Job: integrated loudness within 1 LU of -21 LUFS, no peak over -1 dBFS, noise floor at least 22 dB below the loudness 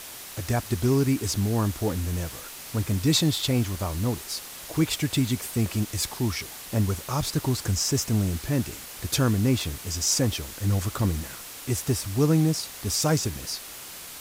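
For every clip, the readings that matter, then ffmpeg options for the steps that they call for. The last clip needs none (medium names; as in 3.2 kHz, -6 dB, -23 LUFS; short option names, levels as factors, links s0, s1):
noise floor -41 dBFS; noise floor target -48 dBFS; loudness -26.0 LUFS; peak level -10.5 dBFS; loudness target -21.0 LUFS
-> -af "afftdn=nr=7:nf=-41"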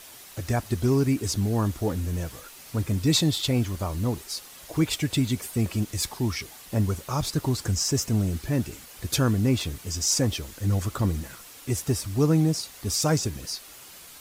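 noise floor -46 dBFS; noise floor target -49 dBFS
-> -af "afftdn=nr=6:nf=-46"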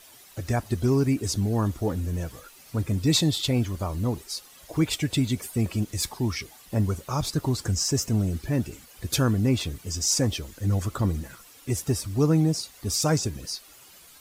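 noise floor -51 dBFS; loudness -26.5 LUFS; peak level -10.5 dBFS; loudness target -21.0 LUFS
-> -af "volume=1.88"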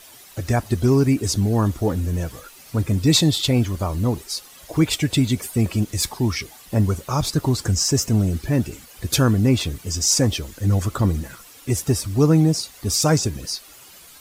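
loudness -21.0 LUFS; peak level -5.0 dBFS; noise floor -46 dBFS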